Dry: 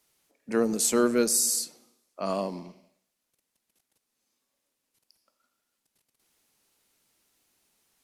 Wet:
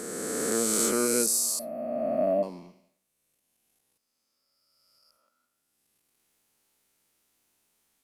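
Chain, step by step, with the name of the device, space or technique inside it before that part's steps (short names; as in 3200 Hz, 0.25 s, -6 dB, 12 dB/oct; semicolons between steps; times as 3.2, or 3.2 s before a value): spectral swells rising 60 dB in 2.75 s; 1.59–2.43 EQ curve 180 Hz 0 dB, 250 Hz +14 dB, 430 Hz -5 dB, 620 Hz +14 dB, 1000 Hz -17 dB, 1900 Hz +5 dB, 3100 Hz -14 dB, 7300 Hz -29 dB, 12000 Hz 0 dB; exciter from parts (in parallel at -10 dB: HPF 3700 Hz + soft clip -21.5 dBFS, distortion -11 dB + HPF 4500 Hz 12 dB/oct); on the sum: gain -6 dB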